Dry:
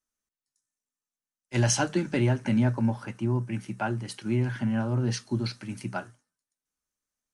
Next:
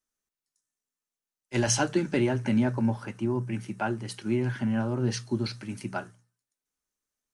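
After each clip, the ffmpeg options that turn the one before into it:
-af "equalizer=f=400:w=4.1:g=4,bandreject=f=60:t=h:w=6,bandreject=f=120:t=h:w=6,bandreject=f=180:t=h:w=6"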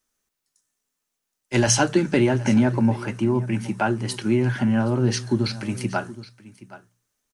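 -filter_complex "[0:a]aecho=1:1:771:0.1,asplit=2[a][b];[b]acompressor=threshold=-35dB:ratio=6,volume=0dB[c];[a][c]amix=inputs=2:normalize=0,volume=4.5dB"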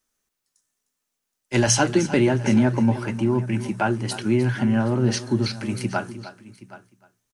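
-af "aecho=1:1:305:0.188"

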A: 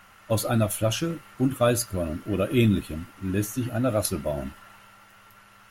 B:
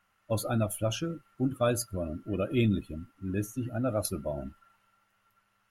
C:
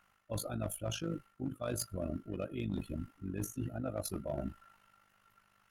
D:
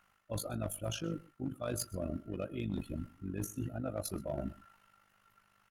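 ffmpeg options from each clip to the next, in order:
-af "afftdn=nr=14:nf=-36,volume=-5.5dB"
-af "areverse,acompressor=threshold=-36dB:ratio=16,areverse,asoftclip=type=hard:threshold=-32.5dB,tremolo=f=50:d=0.71,volume=5dB"
-af "aecho=1:1:126:0.075"

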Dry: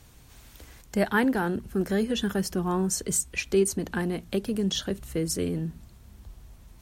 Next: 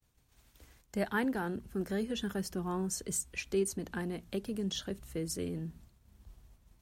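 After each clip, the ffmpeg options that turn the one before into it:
-af "agate=range=-33dB:threshold=-44dB:ratio=3:detection=peak,volume=-8.5dB"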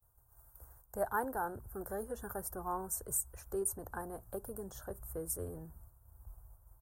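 -af "firequalizer=gain_entry='entry(110,0);entry(180,-18);entry(530,-2);entry(840,2);entry(1500,-4);entry(2200,-30);entry(3200,-29);entry(9200,2);entry(14000,9)':delay=0.05:min_phase=1,volume=2.5dB"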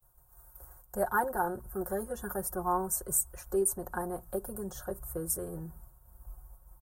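-af "aecho=1:1:5.5:0.77,volume=4dB"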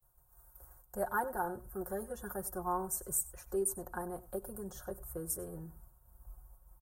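-af "aecho=1:1:97:0.106,volume=-5dB"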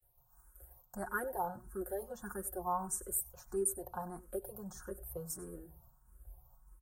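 -filter_complex "[0:a]asplit=2[a][b];[b]afreqshift=1.6[c];[a][c]amix=inputs=2:normalize=1,volume=1dB"

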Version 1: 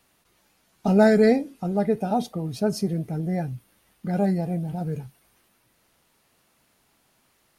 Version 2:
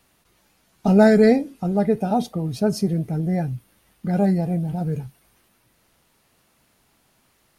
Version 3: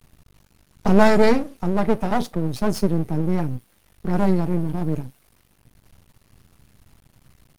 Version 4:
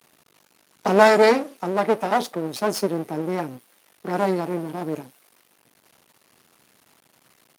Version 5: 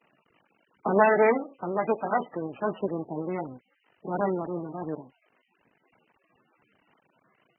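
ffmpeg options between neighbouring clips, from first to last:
-af "lowshelf=f=170:g=4.5,volume=2dB"
-filter_complex "[0:a]acrossover=split=140|410|3900[a][b][c][d];[a]acompressor=mode=upward:threshold=-39dB:ratio=2.5[e];[e][b][c][d]amix=inputs=4:normalize=0,aeval=exprs='max(val(0),0)':c=same,volume=4.5dB"
-af "highpass=370,volume=3.5dB"
-af "volume=-5dB" -ar 22050 -c:a libmp3lame -b:a 8k

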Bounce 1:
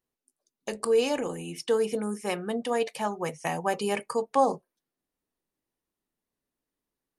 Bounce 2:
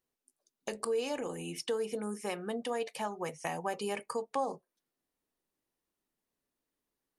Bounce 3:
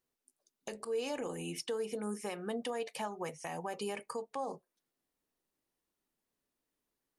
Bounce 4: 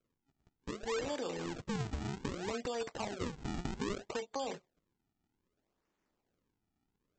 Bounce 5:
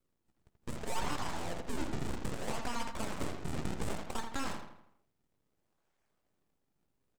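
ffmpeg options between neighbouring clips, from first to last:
-af "bass=f=250:g=-3,treble=f=4k:g=0,acompressor=threshold=-37dB:ratio=2"
-af "alimiter=level_in=4dB:limit=-24dB:level=0:latency=1:release=164,volume=-4dB"
-filter_complex "[0:a]acrossover=split=360|730|3400[a][b][c][d];[a]acompressor=threshold=-53dB:ratio=4[e];[b]acompressor=threshold=-46dB:ratio=4[f];[c]acompressor=threshold=-53dB:ratio=4[g];[d]acompressor=threshold=-53dB:ratio=4[h];[e][f][g][h]amix=inputs=4:normalize=0,aresample=16000,acrusher=samples=17:mix=1:aa=0.000001:lfo=1:lforange=27.2:lforate=0.63,aresample=44100,volume=6.5dB"
-filter_complex "[0:a]asplit=2[a][b];[b]adelay=82,lowpass=f=2.2k:p=1,volume=-6dB,asplit=2[c][d];[d]adelay=82,lowpass=f=2.2k:p=1,volume=0.49,asplit=2[e][f];[f]adelay=82,lowpass=f=2.2k:p=1,volume=0.49,asplit=2[g][h];[h]adelay=82,lowpass=f=2.2k:p=1,volume=0.49,asplit=2[i][j];[j]adelay=82,lowpass=f=2.2k:p=1,volume=0.49,asplit=2[k][l];[l]adelay=82,lowpass=f=2.2k:p=1,volume=0.49[m];[a][c][e][g][i][k][m]amix=inputs=7:normalize=0,aeval=exprs='abs(val(0))':c=same,volume=3.5dB"

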